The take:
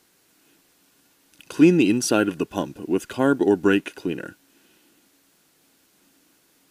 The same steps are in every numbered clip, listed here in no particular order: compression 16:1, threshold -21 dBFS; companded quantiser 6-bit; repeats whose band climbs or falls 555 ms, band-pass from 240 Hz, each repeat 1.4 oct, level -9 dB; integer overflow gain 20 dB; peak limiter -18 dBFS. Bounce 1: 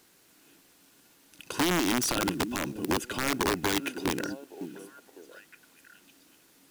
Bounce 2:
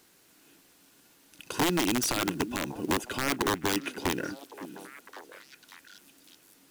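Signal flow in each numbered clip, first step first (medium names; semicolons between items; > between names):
peak limiter > repeats whose band climbs or falls > compression > integer overflow > companded quantiser; compression > peak limiter > integer overflow > repeats whose band climbs or falls > companded quantiser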